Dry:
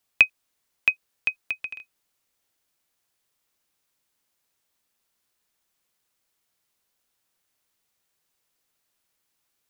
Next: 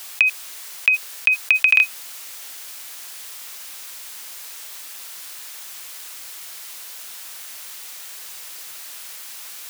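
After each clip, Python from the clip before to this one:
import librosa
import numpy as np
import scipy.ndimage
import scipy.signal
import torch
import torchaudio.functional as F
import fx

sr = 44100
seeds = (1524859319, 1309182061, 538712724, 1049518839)

y = fx.highpass(x, sr, hz=1300.0, slope=6)
y = fx.env_flatten(y, sr, amount_pct=100)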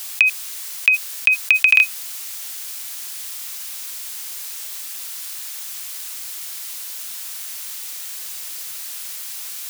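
y = fx.high_shelf(x, sr, hz=2900.0, db=7.5)
y = y * 10.0 ** (-1.5 / 20.0)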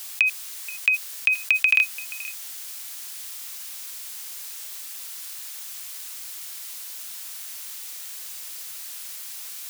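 y = x + 10.0 ** (-18.0 / 20.0) * np.pad(x, (int(478 * sr / 1000.0), 0))[:len(x)]
y = y * 10.0 ** (-5.5 / 20.0)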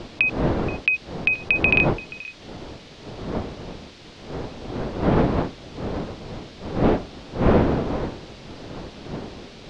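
y = fx.dmg_wind(x, sr, seeds[0], corner_hz=450.0, level_db=-26.0)
y = scipy.signal.sosfilt(scipy.signal.butter(4, 4300.0, 'lowpass', fs=sr, output='sos'), y)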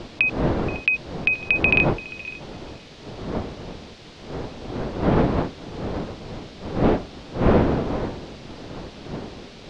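y = x + 10.0 ** (-20.5 / 20.0) * np.pad(x, (int(551 * sr / 1000.0), 0))[:len(x)]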